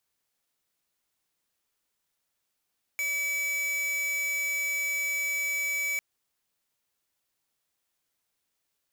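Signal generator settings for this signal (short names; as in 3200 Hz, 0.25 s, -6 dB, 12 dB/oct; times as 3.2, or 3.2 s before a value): tone square 2290 Hz -29.5 dBFS 3.00 s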